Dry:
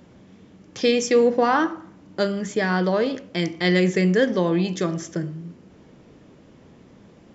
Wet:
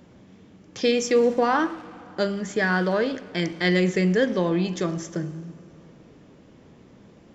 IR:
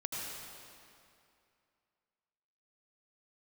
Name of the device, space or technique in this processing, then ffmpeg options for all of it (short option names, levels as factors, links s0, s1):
saturated reverb return: -filter_complex "[0:a]asettb=1/sr,asplit=3[s0][s1][s2];[s0]atrim=end=2.484[s3];[s1]atrim=start=2.48:end=3.7,asetpts=PTS-STARTPTS,afade=t=in:d=0.004:c=qsin,afade=t=out:st=1.216:d=0.004:c=qsin,equalizer=f=1600:t=o:w=0.45:g=6[s4];[s2]atrim=start=3.696[s5];[s3][s4]acrossfade=d=0.004:c1=hsin:c2=qsin[s6];[s6][s5]acrossfade=d=0.004:c1=qsin:c2=hsin,asplit=2[s7][s8];[1:a]atrim=start_sample=2205[s9];[s8][s9]afir=irnorm=-1:irlink=0,asoftclip=type=tanh:threshold=0.0668,volume=0.2[s10];[s7][s10]amix=inputs=2:normalize=0,volume=0.75"